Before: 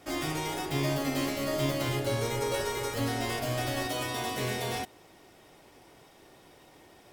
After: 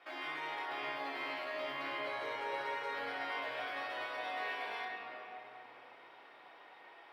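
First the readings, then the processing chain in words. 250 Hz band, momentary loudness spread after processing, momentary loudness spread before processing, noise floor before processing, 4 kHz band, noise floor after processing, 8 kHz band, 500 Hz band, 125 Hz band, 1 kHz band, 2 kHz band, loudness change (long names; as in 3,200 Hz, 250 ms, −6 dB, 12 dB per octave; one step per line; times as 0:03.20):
−19.5 dB, 17 LU, 3 LU, −57 dBFS, −10.0 dB, −58 dBFS, below −25 dB, −11.0 dB, −33.5 dB, −4.0 dB, −2.0 dB, −8.5 dB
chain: high-pass filter 1,100 Hz 12 dB per octave
downward compressor 2 to 1, threshold −46 dBFS, peak gain reduction 7.5 dB
high-frequency loss of the air 430 metres
rectangular room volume 210 cubic metres, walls hard, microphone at 0.76 metres
level +3.5 dB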